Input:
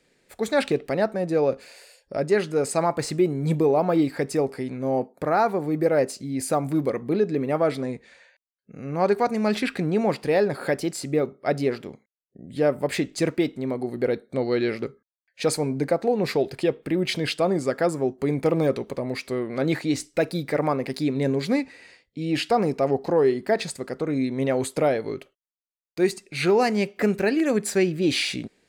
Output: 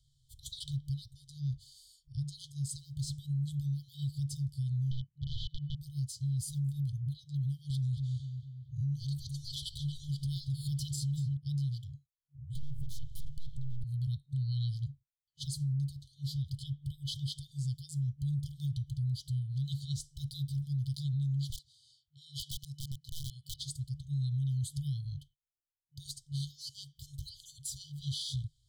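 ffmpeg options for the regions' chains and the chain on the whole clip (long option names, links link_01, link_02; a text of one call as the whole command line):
ffmpeg -i in.wav -filter_complex "[0:a]asettb=1/sr,asplit=3[link_01][link_02][link_03];[link_01]atrim=end=4.914[link_04];[link_02]atrim=start=4.91:end=5.77,asetpts=PTS-STARTPTS,afade=type=in:duration=0.004:curve=qsin,afade=type=out:start_time=0.856:duration=0.004:curve=qsin,aeval=exprs='(mod(7.94*val(0)+1,2)-1)/7.94':channel_layout=same,lowpass=frequency=3500:width=0.5412,lowpass=frequency=3500:width=1.3066[link_05];[link_03]atrim=start=5.766[link_06];[link_04][link_05]acrossfade=duration=0.004:curve1=hsin:curve2=qsin[link_07];[link_07][link_06]acrossfade=duration=0.004:curve1=qsin:curve2=hsin,asettb=1/sr,asplit=3[link_08][link_09][link_10];[link_08]atrim=end=7.704[link_11];[link_09]atrim=start=7.7:end=11.37,asetpts=PTS-STARTPTS,afade=type=in:duration=0.004:curve=qsin,afade=type=out:start_time=3.666:duration=0.004:curve=qsin,acontrast=47,asplit=2[link_12][link_13];[link_13]adelay=229,lowpass=frequency=2900:poles=1,volume=-9dB,asplit=2[link_14][link_15];[link_15]adelay=229,lowpass=frequency=2900:poles=1,volume=0.52,asplit=2[link_16][link_17];[link_17]adelay=229,lowpass=frequency=2900:poles=1,volume=0.52,asplit=2[link_18][link_19];[link_19]adelay=229,lowpass=frequency=2900:poles=1,volume=0.52,asplit=2[link_20][link_21];[link_21]adelay=229,lowpass=frequency=2900:poles=1,volume=0.52,asplit=2[link_22][link_23];[link_23]adelay=229,lowpass=frequency=2900:poles=1,volume=0.52[link_24];[link_12][link_14][link_16][link_18][link_20][link_22][link_24]amix=inputs=7:normalize=0,atrim=end_sample=161847[link_25];[link_10]atrim=start=11.366[link_26];[link_11][link_25]acrossfade=duration=0.004:curve1=hsin:curve2=qsin[link_27];[link_27][link_26]acrossfade=duration=0.004:curve1=qsin:curve2=hsin,asettb=1/sr,asplit=3[link_28][link_29][link_30];[link_28]atrim=end=12.554[link_31];[link_29]atrim=start=12.55:end=13.84,asetpts=PTS-STARTPTS,afade=type=in:duration=0.004:curve=qsin,afade=type=out:start_time=1.286:duration=0.004:curve=qsin,aeval=exprs='abs(val(0))':channel_layout=same,acompressor=mode=upward:threshold=-30dB:ratio=2.5:attack=3.2:release=140:knee=2.83:detection=peak[link_32];[link_30]atrim=start=13.836[link_33];[link_31][link_32]acrossfade=duration=0.004:curve1=hsin:curve2=qsin[link_34];[link_34][link_33]acrossfade=duration=0.004:curve1=qsin:curve2=hsin,asettb=1/sr,asplit=3[link_35][link_36][link_37];[link_35]atrim=end=21.504[link_38];[link_36]atrim=start=21.5:end=23.54,asetpts=PTS-STARTPTS,afade=type=in:duration=0.004:curve=qsin,afade=type=out:start_time=2.036:duration=0.004:curve=qsin,highpass=frequency=580:poles=1,aeval=exprs='(mod(8.41*val(0)+1,2)-1)/8.41':channel_layout=same[link_39];[link_37]atrim=start=23.536[link_40];[link_38][link_39]acrossfade=duration=0.004:curve1=hsin:curve2=qsin[link_41];[link_41][link_40]acrossfade=duration=0.004:curve1=qsin:curve2=hsin,afftfilt=real='re*(1-between(b*sr/4096,140,3000))':imag='im*(1-between(b*sr/4096,140,3000))':win_size=4096:overlap=0.75,tiltshelf=frequency=1100:gain=8,alimiter=level_in=4dB:limit=-24dB:level=0:latency=1:release=70,volume=-4dB" out.wav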